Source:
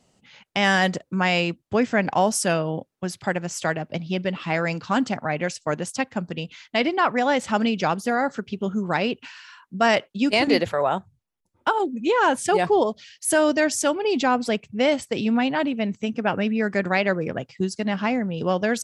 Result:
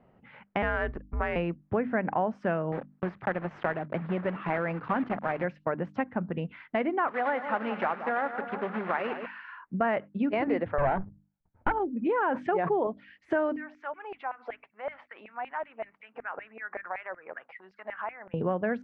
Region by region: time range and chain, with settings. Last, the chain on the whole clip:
0.62–1.36 s: power-law waveshaper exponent 1.4 + frequency shift -130 Hz
2.72–5.45 s: block-companded coder 3-bit + bass shelf 84 Hz -12 dB
7.07–9.26 s: block-companded coder 3-bit + frequency weighting A + two-band feedback delay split 1.3 kHz, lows 170 ms, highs 102 ms, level -12 dB
10.78–11.72 s: comb filter that takes the minimum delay 1.3 ms + bass shelf 190 Hz +8 dB + waveshaping leveller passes 2
12.22–12.87 s: high-pass 180 Hz + decay stretcher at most 41 dB/s
13.56–18.34 s: compression 8:1, threshold -34 dBFS + LFO high-pass saw down 5.3 Hz 600–2400 Hz + distance through air 66 m
whole clip: low-pass 1.9 kHz 24 dB/octave; hum notches 50/100/150/200/250/300 Hz; compression 2.5:1, threshold -33 dBFS; trim +3.5 dB

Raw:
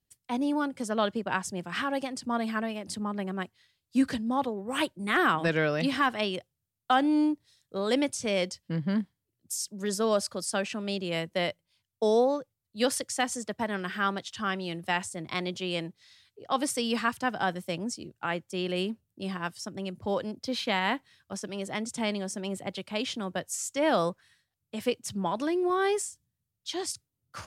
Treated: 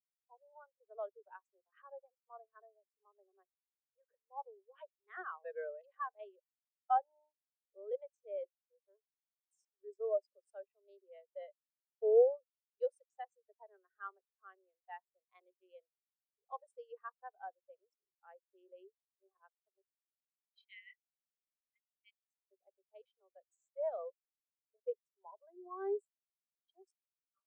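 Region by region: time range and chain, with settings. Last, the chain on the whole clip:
19.81–22.51 s: steep high-pass 1.9 kHz 96 dB/octave + three bands expanded up and down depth 100%
whole clip: local Wiener filter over 15 samples; steep high-pass 380 Hz 96 dB/octave; spectral contrast expander 2.5:1; trim -4.5 dB

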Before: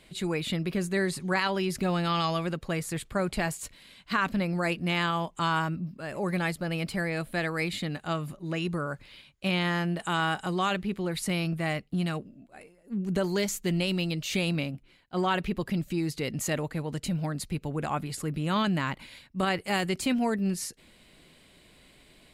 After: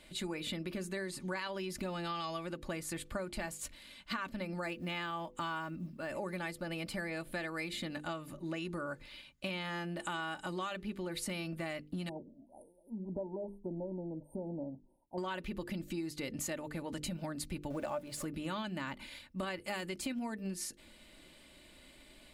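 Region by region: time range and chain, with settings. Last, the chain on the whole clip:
4.66–6.10 s: block-companded coder 7-bit + tone controls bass 0 dB, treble -4 dB
12.09–15.18 s: brick-wall FIR band-stop 1–8.5 kHz + bass shelf 480 Hz -7.5 dB + low-pass that closes with the level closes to 1.1 kHz, closed at -33 dBFS
17.70–18.25 s: jump at every zero crossing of -42 dBFS + peaking EQ 590 Hz +14 dB 0.25 oct
whole clip: hum notches 50/100/150/200/250/300/350/400/450/500 Hz; comb 3.4 ms, depth 47%; compression 6:1, threshold -34 dBFS; trim -2 dB

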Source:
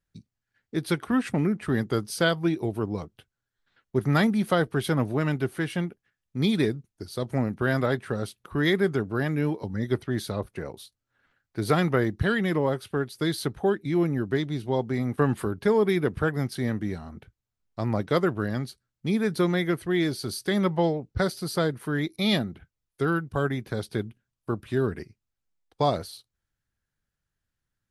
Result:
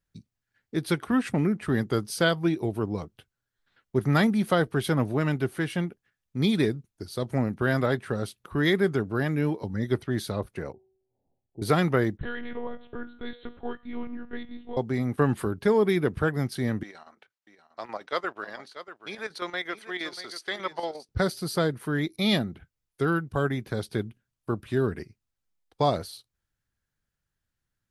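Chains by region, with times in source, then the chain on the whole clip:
10.72–11.62 s: companding laws mixed up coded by mu + steep low-pass 850 Hz 72 dB/octave + feedback comb 380 Hz, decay 0.79 s, mix 70%
12.17–14.77 s: feedback comb 94 Hz, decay 0.72 s, harmonics odd, mix 70% + monotone LPC vocoder at 8 kHz 240 Hz
16.83–21.09 s: band-pass 700–6500 Hz + square tremolo 8.5 Hz, depth 60%, duty 70% + delay 638 ms -12.5 dB
whole clip: none

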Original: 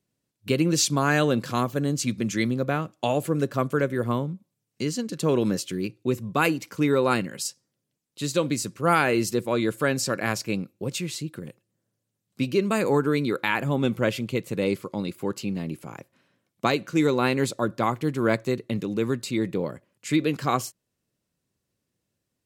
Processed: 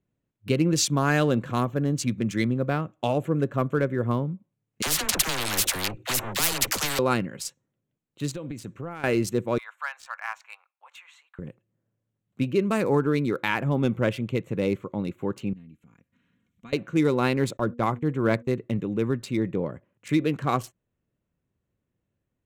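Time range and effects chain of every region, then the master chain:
4.82–6.99 s: waveshaping leveller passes 2 + phase dispersion lows, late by 50 ms, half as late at 540 Hz + spectrum-flattening compressor 10:1
8.33–9.04 s: compression 8:1, threshold -30 dBFS + dynamic bell 1.2 kHz, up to -3 dB, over -44 dBFS, Q 1.5
9.58–11.39 s: steep high-pass 850 Hz 48 dB/octave + tilt EQ -3.5 dB/octave
15.53–16.73 s: amplifier tone stack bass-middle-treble 6-0-2 + comb 4.2 ms, depth 56% + upward compressor, threshold -50 dBFS
17.57–18.55 s: gate -40 dBFS, range -23 dB + de-hum 238 Hz, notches 2
whole clip: local Wiener filter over 9 samples; bass shelf 72 Hz +12 dB; trim -1 dB

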